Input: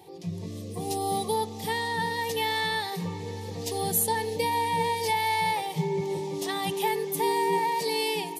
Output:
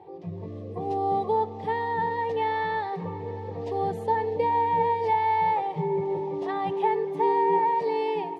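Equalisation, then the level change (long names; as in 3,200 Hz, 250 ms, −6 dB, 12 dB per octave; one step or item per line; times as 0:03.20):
low-pass filter 1,100 Hz 12 dB per octave
low-shelf EQ 84 Hz −8 dB
parametric band 200 Hz −8 dB 1.5 octaves
+6.0 dB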